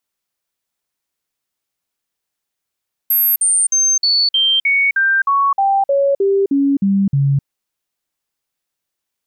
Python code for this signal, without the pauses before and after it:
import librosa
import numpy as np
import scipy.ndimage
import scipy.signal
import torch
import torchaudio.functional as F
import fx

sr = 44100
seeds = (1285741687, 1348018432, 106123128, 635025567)

y = fx.stepped_sweep(sr, from_hz=12600.0, direction='down', per_octave=2, tones=14, dwell_s=0.26, gap_s=0.05, level_db=-11.0)